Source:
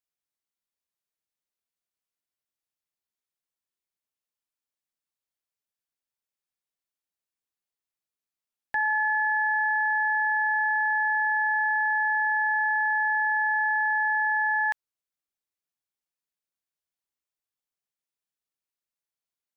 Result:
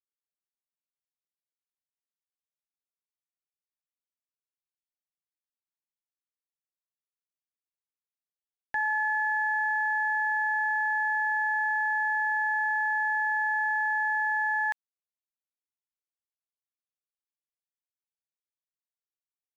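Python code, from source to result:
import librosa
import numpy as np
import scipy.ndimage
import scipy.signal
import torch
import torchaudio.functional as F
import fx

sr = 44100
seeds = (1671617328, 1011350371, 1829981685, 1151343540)

y = np.sign(x) * np.maximum(np.abs(x) - 10.0 ** (-58.0 / 20.0), 0.0)
y = y * librosa.db_to_amplitude(-2.5)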